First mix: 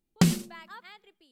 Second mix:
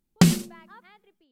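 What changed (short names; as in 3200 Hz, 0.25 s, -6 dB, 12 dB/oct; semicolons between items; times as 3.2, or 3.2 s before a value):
speech: add tape spacing loss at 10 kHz 28 dB; background +4.5 dB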